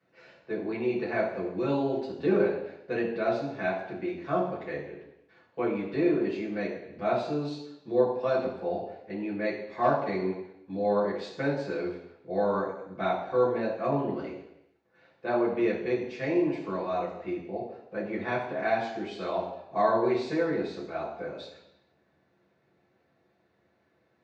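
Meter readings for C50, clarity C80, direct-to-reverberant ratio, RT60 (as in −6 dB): 5.0 dB, 7.5 dB, −7.5 dB, 0.80 s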